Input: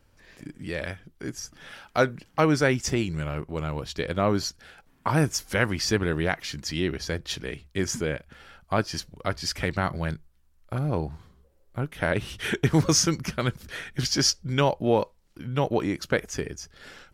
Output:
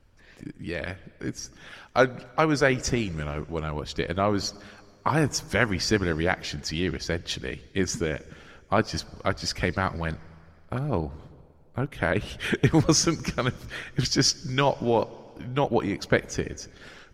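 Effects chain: low shelf 95 Hz +5.5 dB; reverb RT60 2.4 s, pre-delay 6 ms, DRR 17.5 dB; harmonic-percussive split harmonic -7 dB; high shelf 9700 Hz -11 dB; gain +2.5 dB

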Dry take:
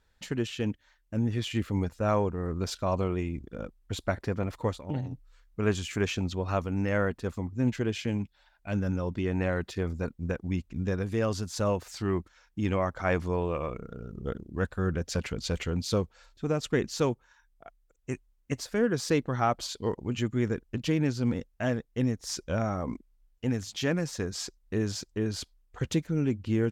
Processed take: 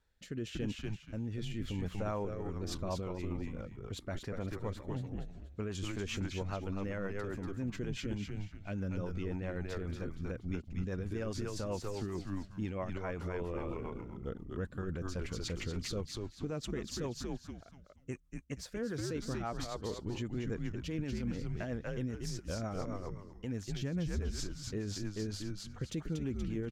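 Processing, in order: 23.74–24.2 bell 92 Hz +15 dB 2.8 oct; frequency-shifting echo 0.238 s, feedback 31%, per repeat -99 Hz, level -4 dB; limiter -22.5 dBFS, peak gain reduction 12.5 dB; rotary speaker horn 0.85 Hz, later 7.5 Hz, at 2.1; gain -4.5 dB

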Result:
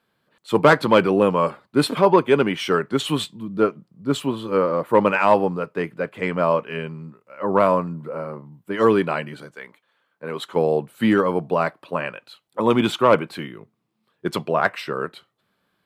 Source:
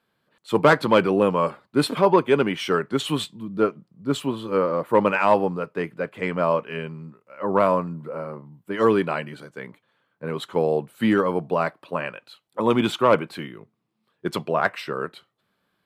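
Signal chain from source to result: 9.54–10.55 HPF 1000 Hz -> 250 Hz 6 dB/oct; gain +2 dB

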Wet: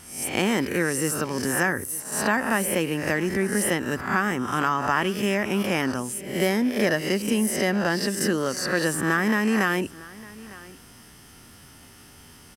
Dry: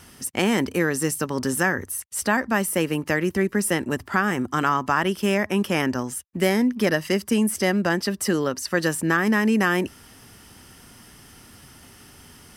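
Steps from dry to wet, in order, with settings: spectral swells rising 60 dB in 0.59 s; on a send: echo 0.905 s -20.5 dB; on the sum: gain -3 dB

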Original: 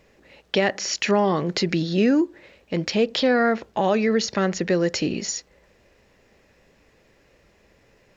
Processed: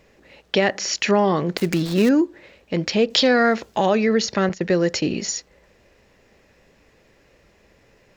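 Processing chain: 1.57–2.09 switching dead time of 0.12 ms; 3.1–3.86 high shelf 4100 Hz +12 dB; 4.49–5.09 gate -27 dBFS, range -15 dB; gain +2 dB

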